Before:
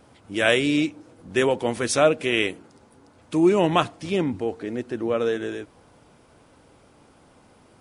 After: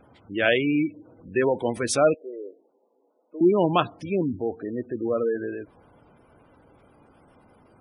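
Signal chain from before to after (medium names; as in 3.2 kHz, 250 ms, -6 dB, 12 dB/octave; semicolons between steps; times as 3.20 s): 2.14–3.41 s: ladder band-pass 550 Hz, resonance 40%; spectral gate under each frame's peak -20 dB strong; trim -1 dB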